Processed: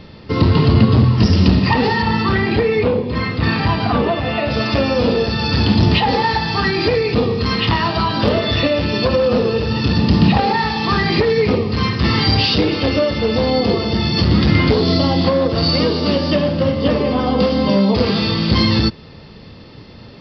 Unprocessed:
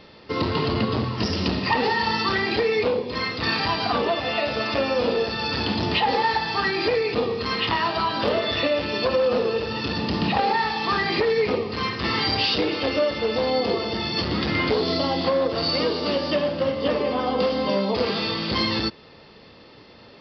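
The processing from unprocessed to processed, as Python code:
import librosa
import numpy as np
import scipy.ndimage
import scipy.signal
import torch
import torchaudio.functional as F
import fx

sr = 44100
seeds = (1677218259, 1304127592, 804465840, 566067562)

y = fx.bass_treble(x, sr, bass_db=13, treble_db=fx.steps((0.0, 0.0), (2.01, -10.0), (4.49, 3.0)))
y = y * librosa.db_to_amplitude(4.0)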